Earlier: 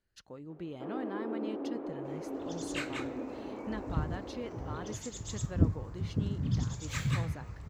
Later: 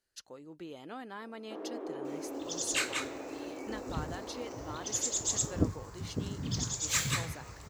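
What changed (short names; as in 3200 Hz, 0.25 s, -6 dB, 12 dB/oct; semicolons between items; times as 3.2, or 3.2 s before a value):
first sound: entry +0.70 s; second sound +4.5 dB; master: add tone controls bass -11 dB, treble +11 dB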